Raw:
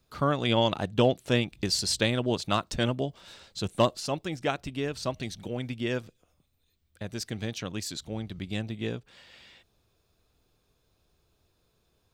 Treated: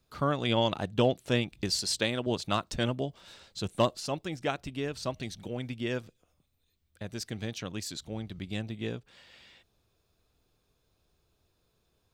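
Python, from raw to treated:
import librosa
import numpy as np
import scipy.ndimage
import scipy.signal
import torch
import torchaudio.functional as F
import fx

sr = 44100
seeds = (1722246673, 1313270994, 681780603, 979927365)

y = fx.low_shelf(x, sr, hz=120.0, db=-11.0, at=(1.78, 2.27))
y = y * librosa.db_to_amplitude(-2.5)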